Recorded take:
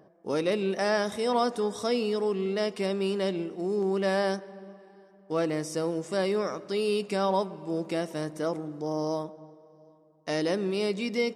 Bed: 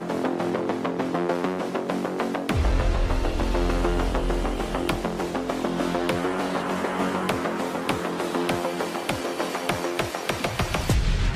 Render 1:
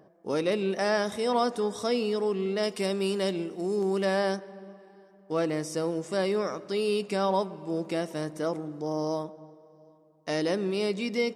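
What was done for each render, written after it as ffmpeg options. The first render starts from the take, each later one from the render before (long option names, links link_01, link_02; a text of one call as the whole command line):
ffmpeg -i in.wav -filter_complex "[0:a]asettb=1/sr,asplit=3[link_01][link_02][link_03];[link_01]atrim=end=2.634[link_04];[link_02]atrim=start=2.63:end=4.05,asetpts=PTS-STARTPTS,afade=type=in:duration=0.004:curve=qsin,afade=type=out:start_time=1.416:duration=0.004:curve=qsin,highshelf=frequency=6000:gain=10.5[link_05];[link_03]atrim=start=4.046[link_06];[link_04][link_05]acrossfade=duration=0.004:curve1=hsin:curve2=qsin[link_07];[link_07][link_06]acrossfade=duration=0.004:curve1=qsin:curve2=hsin" out.wav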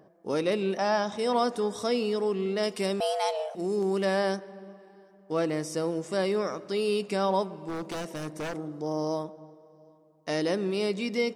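ffmpeg -i in.wav -filter_complex "[0:a]asplit=3[link_01][link_02][link_03];[link_01]afade=type=out:start_time=0.77:duration=0.02[link_04];[link_02]highpass=120,equalizer=frequency=440:width_type=q:width=4:gain=-8,equalizer=frequency=890:width_type=q:width=4:gain=7,equalizer=frequency=2000:width_type=q:width=4:gain=-7,equalizer=frequency=4300:width_type=q:width=4:gain=-3,lowpass=frequency=6500:width=0.5412,lowpass=frequency=6500:width=1.3066,afade=type=in:start_time=0.77:duration=0.02,afade=type=out:start_time=1.17:duration=0.02[link_05];[link_03]afade=type=in:start_time=1.17:duration=0.02[link_06];[link_04][link_05][link_06]amix=inputs=3:normalize=0,asettb=1/sr,asplit=3[link_07][link_08][link_09];[link_07]atrim=end=3.004[link_10];[link_08]atrim=start=3:end=3.55,asetpts=PTS-STARTPTS,afade=type=in:duration=0.004:curve=qsin,afade=type=out:start_time=0.546:duration=0.004:curve=qsin,afreqshift=290[link_11];[link_09]atrim=start=3.546[link_12];[link_10][link_11]acrossfade=duration=0.004:curve1=hsin:curve2=qsin[link_13];[link_13][link_12]acrossfade=duration=0.004:curve1=qsin:curve2=hsin,asettb=1/sr,asplit=3[link_14][link_15][link_16];[link_14]atrim=end=7.574[link_17];[link_15]atrim=start=7.57:end=8.57,asetpts=PTS-STARTPTS,afade=type=in:duration=0.004:curve=qsin,afade=type=out:start_time=0.996:duration=0.004:curve=qsin,aeval=exprs='0.0376*(abs(mod(val(0)/0.0376+3,4)-2)-1)':channel_layout=same[link_18];[link_16]atrim=start=8.566[link_19];[link_17][link_18]acrossfade=duration=0.004:curve1=hsin:curve2=qsin[link_20];[link_20][link_19]acrossfade=duration=0.004:curve1=qsin:curve2=hsin" out.wav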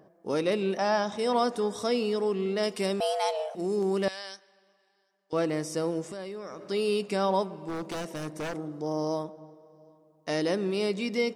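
ffmpeg -i in.wav -filter_complex "[0:a]asettb=1/sr,asplit=3[link_01][link_02][link_03];[link_01]atrim=end=4.084[link_04];[link_02]atrim=start=4.08:end=5.33,asetpts=PTS-STARTPTS,afade=type=in:duration=0.004:curve=qsin,afade=type=out:start_time=1.246:duration=0.004:curve=qsin,bandpass=frequency=4600:width_type=q:width=1.1[link_05];[link_03]atrim=start=5.326[link_06];[link_04][link_05]acrossfade=duration=0.004:curve1=hsin:curve2=qsin[link_07];[link_07][link_06]acrossfade=duration=0.004:curve1=qsin:curve2=hsin,asettb=1/sr,asplit=3[link_08][link_09][link_10];[link_08]atrim=end=6.094[link_11];[link_09]atrim=start=6.09:end=6.69,asetpts=PTS-STARTPTS,afade=type=in:duration=0.004:curve=qsin,afade=type=out:start_time=0.596:duration=0.004:curve=qsin,acompressor=threshold=-36dB:ratio=5:attack=3.2:release=140:knee=1:detection=peak[link_12];[link_10]atrim=start=6.686[link_13];[link_11][link_12]acrossfade=duration=0.004:curve1=hsin:curve2=qsin[link_14];[link_14][link_13]acrossfade=duration=0.004:curve1=qsin:curve2=hsin" out.wav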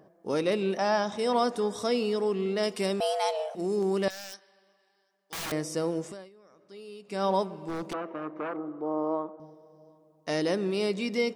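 ffmpeg -i in.wav -filter_complex "[0:a]asettb=1/sr,asplit=3[link_01][link_02][link_03];[link_01]atrim=end=4.104[link_04];[link_02]atrim=start=4.1:end=5.52,asetpts=PTS-STARTPTS,afade=type=in:duration=0.004:curve=qsin,afade=type=out:start_time=1.416:duration=0.004:curve=qsin,aeval=exprs='(mod(33.5*val(0)+1,2)-1)/33.5':channel_layout=same[link_05];[link_03]atrim=start=5.516[link_06];[link_04][link_05]acrossfade=duration=0.004:curve1=hsin:curve2=qsin[link_07];[link_07][link_06]acrossfade=duration=0.004:curve1=qsin:curve2=hsin,asettb=1/sr,asplit=3[link_08][link_09][link_10];[link_08]atrim=end=7.934[link_11];[link_09]atrim=start=7.93:end=9.4,asetpts=PTS-STARTPTS,afade=type=in:duration=0.004:curve=qsin,afade=type=out:start_time=1.466:duration=0.004:curve=qsin,highpass=300,equalizer=frequency=320:width_type=q:width=4:gain=4,equalizer=frequency=1200:width_type=q:width=4:gain=9,equalizer=frequency=1800:width_type=q:width=4:gain=-5,lowpass=frequency=2200:width=0.5412,lowpass=frequency=2200:width=1.3066[link_12];[link_10]atrim=start=9.396[link_13];[link_11][link_12]acrossfade=duration=0.004:curve1=hsin:curve2=qsin[link_14];[link_14][link_13]acrossfade=duration=0.004:curve1=qsin:curve2=hsin,asplit=3[link_15][link_16][link_17];[link_15]atrim=end=6.3,asetpts=PTS-STARTPTS,afade=type=out:start_time=6.07:duration=0.23:silence=0.133352[link_18];[link_16]atrim=start=6.3:end=7.04,asetpts=PTS-STARTPTS,volume=-17.5dB[link_19];[link_17]atrim=start=7.04,asetpts=PTS-STARTPTS,afade=type=in:duration=0.23:silence=0.133352[link_20];[link_18][link_19][link_20]concat=n=3:v=0:a=1" out.wav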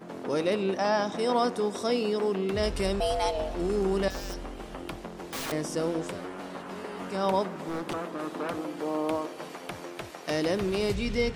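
ffmpeg -i in.wav -i bed.wav -filter_complex "[1:a]volume=-13dB[link_01];[0:a][link_01]amix=inputs=2:normalize=0" out.wav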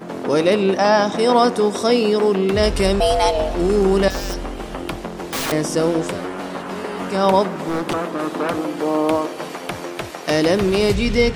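ffmpeg -i in.wav -af "volume=11dB" out.wav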